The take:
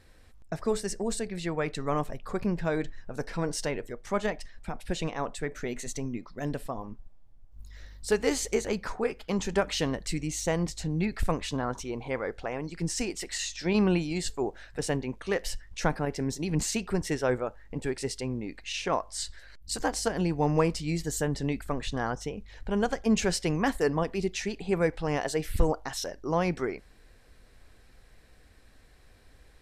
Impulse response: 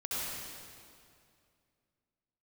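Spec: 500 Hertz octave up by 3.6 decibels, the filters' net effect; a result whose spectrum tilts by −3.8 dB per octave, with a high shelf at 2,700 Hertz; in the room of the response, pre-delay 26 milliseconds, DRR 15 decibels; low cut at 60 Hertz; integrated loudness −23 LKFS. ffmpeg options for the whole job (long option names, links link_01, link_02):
-filter_complex "[0:a]highpass=60,equalizer=frequency=500:width_type=o:gain=4,highshelf=frequency=2700:gain=7.5,asplit=2[link_01][link_02];[1:a]atrim=start_sample=2205,adelay=26[link_03];[link_02][link_03]afir=irnorm=-1:irlink=0,volume=-20dB[link_04];[link_01][link_04]amix=inputs=2:normalize=0,volume=5dB"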